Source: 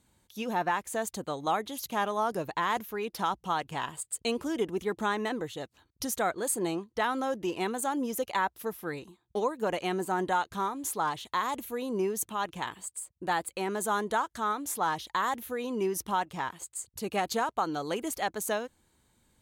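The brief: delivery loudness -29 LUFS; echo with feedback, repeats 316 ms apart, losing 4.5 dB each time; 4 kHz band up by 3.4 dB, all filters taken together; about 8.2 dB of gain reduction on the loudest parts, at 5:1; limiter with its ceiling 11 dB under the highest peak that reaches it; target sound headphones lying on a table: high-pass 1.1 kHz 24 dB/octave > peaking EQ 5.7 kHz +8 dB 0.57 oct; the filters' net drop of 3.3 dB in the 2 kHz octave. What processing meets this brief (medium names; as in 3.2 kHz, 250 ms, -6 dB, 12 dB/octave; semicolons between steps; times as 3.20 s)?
peaking EQ 2 kHz -5 dB; peaking EQ 4 kHz +3.5 dB; compression 5:1, threshold -34 dBFS; peak limiter -32.5 dBFS; high-pass 1.1 kHz 24 dB/octave; peaking EQ 5.7 kHz +8 dB 0.57 oct; feedback delay 316 ms, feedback 60%, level -4.5 dB; trim +14.5 dB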